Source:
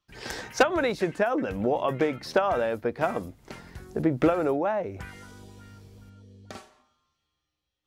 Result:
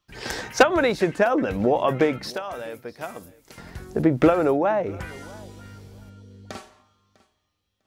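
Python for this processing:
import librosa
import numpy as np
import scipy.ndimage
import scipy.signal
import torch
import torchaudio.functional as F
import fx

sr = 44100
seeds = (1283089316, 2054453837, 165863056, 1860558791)

y = fx.pre_emphasis(x, sr, coefficient=0.8, at=(2.3, 3.58))
y = fx.echo_feedback(y, sr, ms=650, feedback_pct=16, wet_db=-23.0)
y = F.gain(torch.from_numpy(y), 5.0).numpy()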